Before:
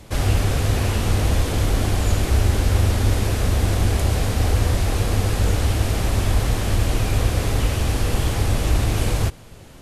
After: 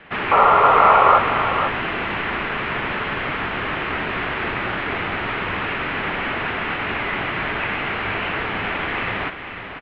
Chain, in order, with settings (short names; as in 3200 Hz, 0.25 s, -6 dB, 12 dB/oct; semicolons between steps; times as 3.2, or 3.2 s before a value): painted sound noise, 0.31–1.19, 760–1800 Hz -21 dBFS; echo 0.495 s -8.5 dB; mistuned SSB -380 Hz 480–3300 Hz; bell 1700 Hz +10 dB 2.4 oct; gain +1 dB